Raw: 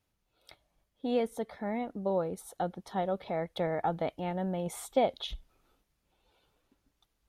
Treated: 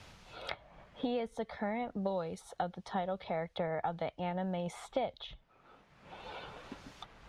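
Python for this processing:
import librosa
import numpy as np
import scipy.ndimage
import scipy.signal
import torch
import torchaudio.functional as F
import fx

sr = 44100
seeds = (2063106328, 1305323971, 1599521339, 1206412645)

y = scipy.signal.sosfilt(scipy.signal.butter(2, 5500.0, 'lowpass', fs=sr, output='sos'), x)
y = fx.peak_eq(y, sr, hz=310.0, db=-8.0, octaves=1.1)
y = fx.band_squash(y, sr, depth_pct=100)
y = F.gain(torch.from_numpy(y), -1.5).numpy()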